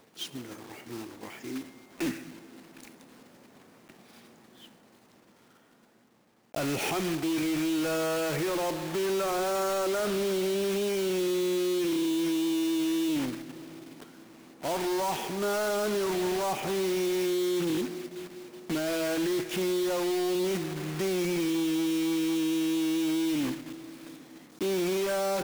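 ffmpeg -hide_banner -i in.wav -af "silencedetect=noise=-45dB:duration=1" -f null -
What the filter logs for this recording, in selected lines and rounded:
silence_start: 4.71
silence_end: 6.54 | silence_duration: 1.83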